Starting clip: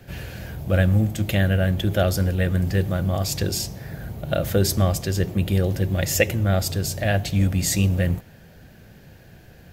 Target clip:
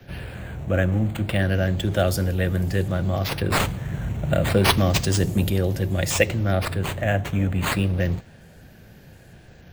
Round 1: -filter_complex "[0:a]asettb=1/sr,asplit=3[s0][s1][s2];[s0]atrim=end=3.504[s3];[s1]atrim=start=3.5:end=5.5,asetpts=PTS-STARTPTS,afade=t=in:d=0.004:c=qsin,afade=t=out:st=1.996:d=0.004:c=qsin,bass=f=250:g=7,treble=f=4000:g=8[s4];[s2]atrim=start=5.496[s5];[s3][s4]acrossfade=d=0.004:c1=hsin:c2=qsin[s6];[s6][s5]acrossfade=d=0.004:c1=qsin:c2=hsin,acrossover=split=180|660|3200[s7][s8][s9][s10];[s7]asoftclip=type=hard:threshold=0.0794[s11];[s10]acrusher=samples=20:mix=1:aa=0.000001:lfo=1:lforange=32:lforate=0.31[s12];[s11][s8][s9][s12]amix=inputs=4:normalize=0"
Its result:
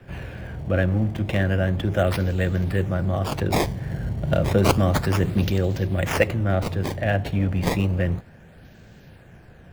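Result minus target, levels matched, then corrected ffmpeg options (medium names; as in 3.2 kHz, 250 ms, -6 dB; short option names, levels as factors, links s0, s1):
decimation with a swept rate: distortion +15 dB
-filter_complex "[0:a]asettb=1/sr,asplit=3[s0][s1][s2];[s0]atrim=end=3.504[s3];[s1]atrim=start=3.5:end=5.5,asetpts=PTS-STARTPTS,afade=t=in:d=0.004:c=qsin,afade=t=out:st=1.996:d=0.004:c=qsin,bass=f=250:g=7,treble=f=4000:g=8[s4];[s2]atrim=start=5.496[s5];[s3][s4]acrossfade=d=0.004:c1=hsin:c2=qsin[s6];[s6][s5]acrossfade=d=0.004:c1=qsin:c2=hsin,acrossover=split=180|660|3200[s7][s8][s9][s10];[s7]asoftclip=type=hard:threshold=0.0794[s11];[s10]acrusher=samples=5:mix=1:aa=0.000001:lfo=1:lforange=8:lforate=0.31[s12];[s11][s8][s9][s12]amix=inputs=4:normalize=0"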